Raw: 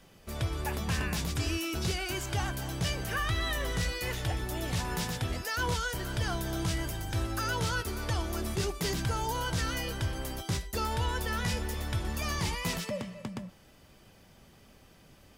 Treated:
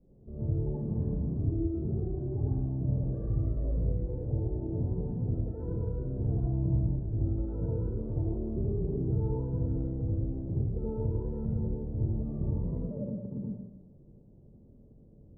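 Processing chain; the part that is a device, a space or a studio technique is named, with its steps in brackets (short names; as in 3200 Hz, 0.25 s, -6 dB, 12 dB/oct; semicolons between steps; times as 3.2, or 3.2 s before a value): next room (LPF 460 Hz 24 dB/oct; reverb RT60 1.0 s, pre-delay 62 ms, DRR -5.5 dB); 6.42–6.96 doubler 17 ms -3.5 dB; gain -3.5 dB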